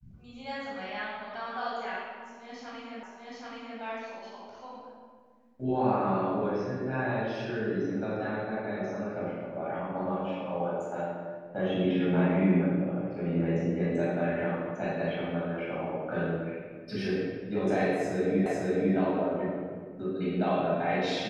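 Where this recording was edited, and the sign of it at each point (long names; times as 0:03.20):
0:03.03: the same again, the last 0.78 s
0:18.46: the same again, the last 0.5 s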